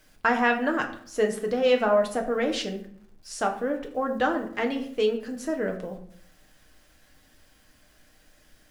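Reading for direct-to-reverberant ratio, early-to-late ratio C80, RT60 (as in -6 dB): 2.5 dB, 13.0 dB, 0.65 s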